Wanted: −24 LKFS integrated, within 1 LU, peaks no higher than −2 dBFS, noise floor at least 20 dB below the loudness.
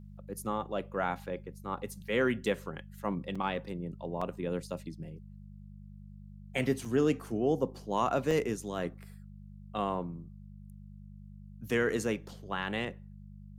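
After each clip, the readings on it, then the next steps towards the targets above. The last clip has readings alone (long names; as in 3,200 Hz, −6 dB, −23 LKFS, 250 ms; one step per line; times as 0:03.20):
number of dropouts 4; longest dropout 4.6 ms; mains hum 50 Hz; hum harmonics up to 200 Hz; level of the hum −46 dBFS; integrated loudness −33.5 LKFS; sample peak −16.5 dBFS; target loudness −24.0 LKFS
→ repair the gap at 0:03.35/0:04.21/0:06.85/0:08.31, 4.6 ms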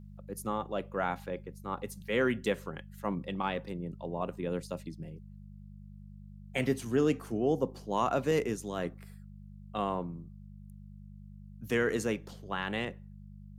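number of dropouts 0; mains hum 50 Hz; hum harmonics up to 200 Hz; level of the hum −46 dBFS
→ hum removal 50 Hz, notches 4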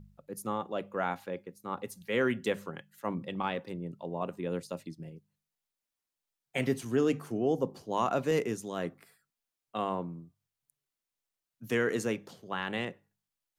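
mains hum none found; integrated loudness −33.5 LKFS; sample peak −16.5 dBFS; target loudness −24.0 LKFS
→ level +9.5 dB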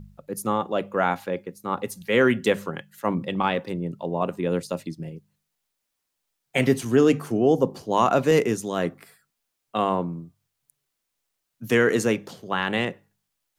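integrated loudness −24.0 LKFS; sample peak −7.0 dBFS; background noise floor −80 dBFS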